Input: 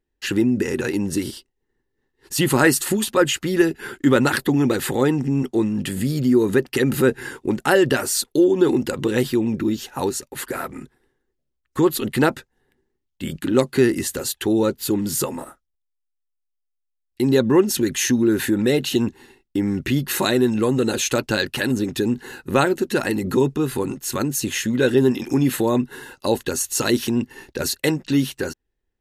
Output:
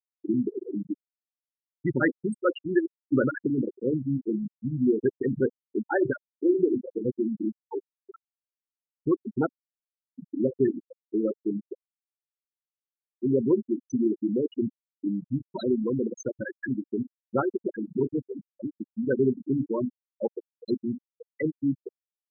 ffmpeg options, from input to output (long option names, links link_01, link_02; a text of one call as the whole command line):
ffmpeg -i in.wav -af "bandreject=frequency=48.16:width_type=h:width=4,bandreject=frequency=96.32:width_type=h:width=4,bandreject=frequency=144.48:width_type=h:width=4,bandreject=frequency=192.64:width_type=h:width=4,bandreject=frequency=240.8:width_type=h:width=4,bandreject=frequency=288.96:width_type=h:width=4,bandreject=frequency=337.12:width_type=h:width=4,bandreject=frequency=385.28:width_type=h:width=4,bandreject=frequency=433.44:width_type=h:width=4,bandreject=frequency=481.6:width_type=h:width=4,bandreject=frequency=529.76:width_type=h:width=4,bandreject=frequency=577.92:width_type=h:width=4,bandreject=frequency=626.08:width_type=h:width=4,bandreject=frequency=674.24:width_type=h:width=4,atempo=1.3,afftfilt=real='re*gte(hypot(re,im),0.447)':imag='im*gte(hypot(re,im),0.447)':win_size=1024:overlap=0.75,volume=-5.5dB" out.wav